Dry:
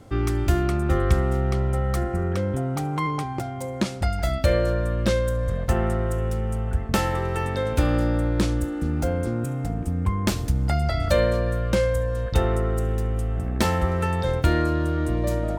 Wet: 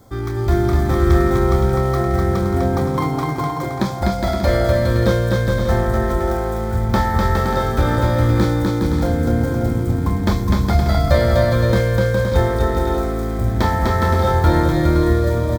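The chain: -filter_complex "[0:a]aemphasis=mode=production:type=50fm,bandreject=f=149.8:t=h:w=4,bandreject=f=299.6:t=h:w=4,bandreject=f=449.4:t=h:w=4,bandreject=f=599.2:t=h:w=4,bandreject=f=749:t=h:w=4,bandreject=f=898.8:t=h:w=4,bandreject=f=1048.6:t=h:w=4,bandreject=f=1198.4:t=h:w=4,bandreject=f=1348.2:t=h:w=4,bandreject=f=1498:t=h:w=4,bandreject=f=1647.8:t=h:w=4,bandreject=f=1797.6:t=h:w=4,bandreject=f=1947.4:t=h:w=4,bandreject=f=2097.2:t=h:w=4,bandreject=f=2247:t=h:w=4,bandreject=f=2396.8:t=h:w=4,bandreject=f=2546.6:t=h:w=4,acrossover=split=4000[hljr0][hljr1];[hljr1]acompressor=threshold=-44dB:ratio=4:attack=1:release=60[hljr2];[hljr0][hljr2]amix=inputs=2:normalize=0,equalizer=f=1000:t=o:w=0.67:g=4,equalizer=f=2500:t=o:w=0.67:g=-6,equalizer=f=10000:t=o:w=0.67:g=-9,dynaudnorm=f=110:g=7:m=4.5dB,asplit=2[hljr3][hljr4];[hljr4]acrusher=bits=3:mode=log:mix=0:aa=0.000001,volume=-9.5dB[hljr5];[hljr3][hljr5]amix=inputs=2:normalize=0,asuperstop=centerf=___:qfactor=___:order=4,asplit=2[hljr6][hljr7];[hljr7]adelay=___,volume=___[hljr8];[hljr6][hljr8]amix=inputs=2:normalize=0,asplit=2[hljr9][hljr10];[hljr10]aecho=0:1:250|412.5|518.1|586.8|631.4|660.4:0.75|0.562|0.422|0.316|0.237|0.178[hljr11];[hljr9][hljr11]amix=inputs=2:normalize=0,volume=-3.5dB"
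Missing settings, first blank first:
2800, 5.6, 26, -7.5dB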